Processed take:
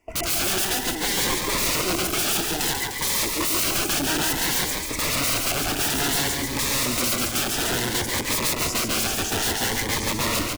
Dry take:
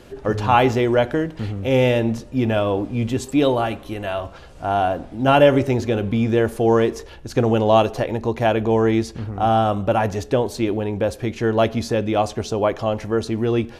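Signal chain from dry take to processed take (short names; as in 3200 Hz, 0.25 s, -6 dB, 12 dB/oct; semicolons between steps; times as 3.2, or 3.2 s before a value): speed glide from 163% -> 98%; gate with hold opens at -26 dBFS; high shelf 2000 Hz +8.5 dB; harmonic-percussive split percussive +8 dB; high shelf 5500 Hz -11.5 dB; fixed phaser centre 810 Hz, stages 8; small resonant body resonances 1200/2000 Hz, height 13 dB, ringing for 60 ms; wrapped overs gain 19 dB; reverse bouncing-ball echo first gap 0.14 s, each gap 1.15×, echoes 5; cascading phaser rising 0.58 Hz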